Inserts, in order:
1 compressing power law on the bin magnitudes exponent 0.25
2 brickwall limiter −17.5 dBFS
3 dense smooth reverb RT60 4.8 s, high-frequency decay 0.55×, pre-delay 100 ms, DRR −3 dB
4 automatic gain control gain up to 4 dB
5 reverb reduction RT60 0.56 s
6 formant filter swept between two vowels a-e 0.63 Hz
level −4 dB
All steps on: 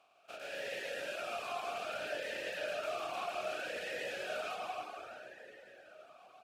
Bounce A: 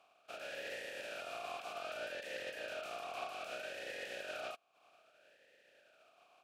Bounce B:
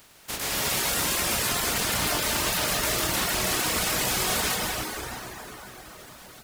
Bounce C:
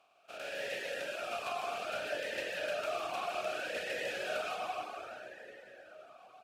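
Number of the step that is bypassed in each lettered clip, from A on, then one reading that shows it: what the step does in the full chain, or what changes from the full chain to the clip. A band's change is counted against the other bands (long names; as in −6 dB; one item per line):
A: 3, change in momentary loudness spread −13 LU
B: 6, 500 Hz band −14.0 dB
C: 2, average gain reduction 1.5 dB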